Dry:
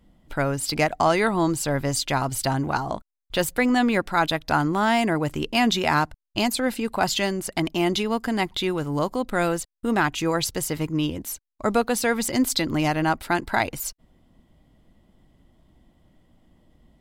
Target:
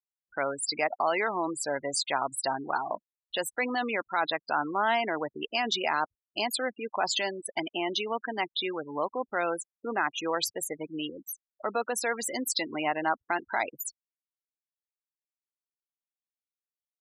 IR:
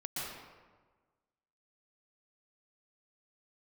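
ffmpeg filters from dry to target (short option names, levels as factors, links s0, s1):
-af "afftfilt=real='re*gte(hypot(re,im),0.0631)':imag='im*gte(hypot(re,im),0.0631)':win_size=1024:overlap=0.75,alimiter=limit=0.2:level=0:latency=1:release=18,highpass=480,volume=0.794"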